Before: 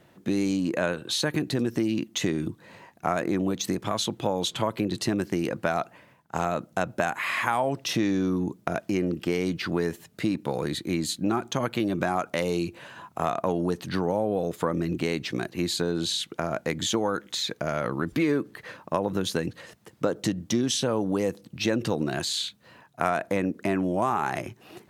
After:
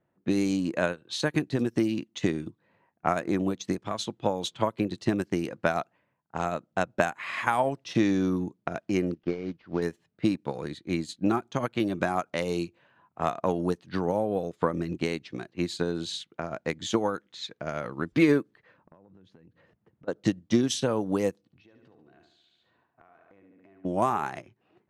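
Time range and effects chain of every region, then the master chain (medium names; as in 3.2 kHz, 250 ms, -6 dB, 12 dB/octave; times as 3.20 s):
9.14–9.82 s: CVSD coder 32 kbps + treble shelf 3.2 kHz -11 dB + upward expansion, over -39 dBFS
18.78–20.08 s: bass shelf 380 Hz +8.5 dB + compression 8:1, threshold -34 dBFS
21.40–23.85 s: comb 2.7 ms, depth 32% + feedback delay 71 ms, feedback 49%, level -7 dB + compression, threshold -37 dBFS
whole clip: level-controlled noise filter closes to 1.7 kHz, open at -21 dBFS; upward expansion 2.5:1, over -36 dBFS; trim +5 dB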